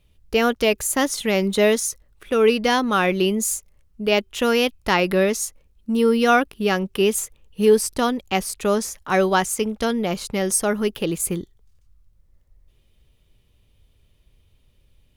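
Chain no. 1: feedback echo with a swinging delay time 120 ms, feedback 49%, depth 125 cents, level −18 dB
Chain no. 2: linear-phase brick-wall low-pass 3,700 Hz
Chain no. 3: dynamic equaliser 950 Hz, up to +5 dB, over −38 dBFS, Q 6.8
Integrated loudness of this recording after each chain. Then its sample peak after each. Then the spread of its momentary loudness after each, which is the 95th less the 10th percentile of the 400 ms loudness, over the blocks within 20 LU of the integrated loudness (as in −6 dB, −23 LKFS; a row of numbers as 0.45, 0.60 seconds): −20.5, −21.0, −20.5 LKFS; −5.0, −5.5, −4.5 dBFS; 8, 8, 8 LU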